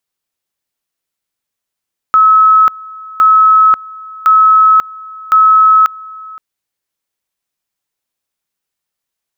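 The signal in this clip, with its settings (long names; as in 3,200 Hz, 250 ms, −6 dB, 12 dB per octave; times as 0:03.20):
tone at two levels in turn 1,290 Hz −3.5 dBFS, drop 23 dB, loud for 0.54 s, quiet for 0.52 s, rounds 4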